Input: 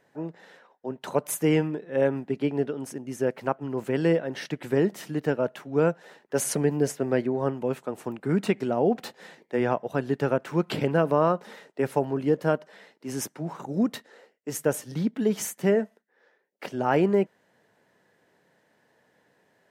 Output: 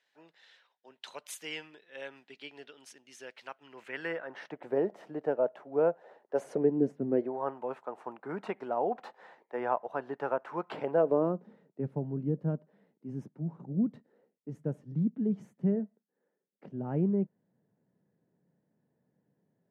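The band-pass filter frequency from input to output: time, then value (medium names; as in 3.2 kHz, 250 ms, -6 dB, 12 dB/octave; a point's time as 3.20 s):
band-pass filter, Q 1.7
3.57 s 3.6 kHz
4.67 s 640 Hz
6.38 s 640 Hz
7.05 s 190 Hz
7.34 s 920 Hz
10.79 s 920 Hz
11.52 s 160 Hz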